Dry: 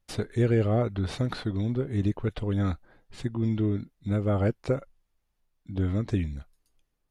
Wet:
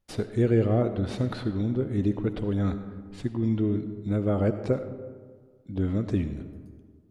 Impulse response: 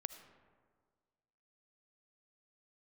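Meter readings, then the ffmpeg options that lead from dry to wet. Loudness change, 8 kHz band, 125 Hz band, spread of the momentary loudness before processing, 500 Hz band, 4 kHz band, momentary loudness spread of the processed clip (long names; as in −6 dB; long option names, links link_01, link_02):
+1.0 dB, can't be measured, −0.5 dB, 9 LU, +2.0 dB, −3.0 dB, 15 LU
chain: -filter_complex "[0:a]equalizer=frequency=300:width=0.51:gain=5.5[link_01];[1:a]atrim=start_sample=2205[link_02];[link_01][link_02]afir=irnorm=-1:irlink=0"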